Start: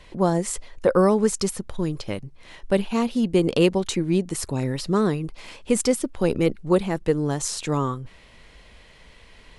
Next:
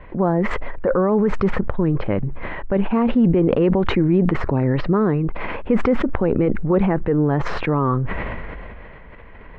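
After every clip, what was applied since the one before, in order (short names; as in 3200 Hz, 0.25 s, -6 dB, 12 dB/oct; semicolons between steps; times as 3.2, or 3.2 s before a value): LPF 1900 Hz 24 dB/oct; maximiser +16 dB; sustainer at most 21 dB/s; gain -8.5 dB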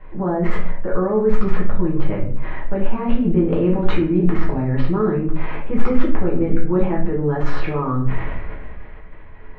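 reverb RT60 0.50 s, pre-delay 5 ms, DRR -5 dB; gain -9 dB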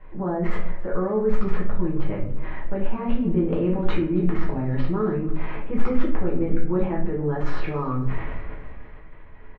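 feedback echo 0.276 s, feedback 59%, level -21 dB; gain -5 dB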